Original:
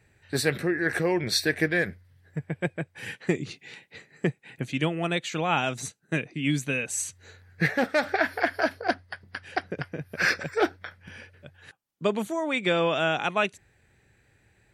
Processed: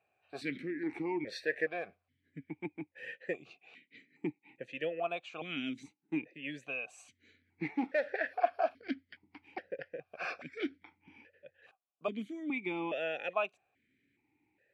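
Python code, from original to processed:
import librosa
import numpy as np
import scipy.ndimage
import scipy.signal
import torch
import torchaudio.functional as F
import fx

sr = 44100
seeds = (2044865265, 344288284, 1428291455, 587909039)

y = fx.vowel_held(x, sr, hz=2.4)
y = y * 10.0 ** (1.5 / 20.0)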